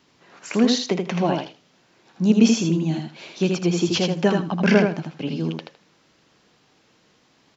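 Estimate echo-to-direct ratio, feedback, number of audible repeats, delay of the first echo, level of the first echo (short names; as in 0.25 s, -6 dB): -4.0 dB, 17%, 3, 80 ms, -4.0 dB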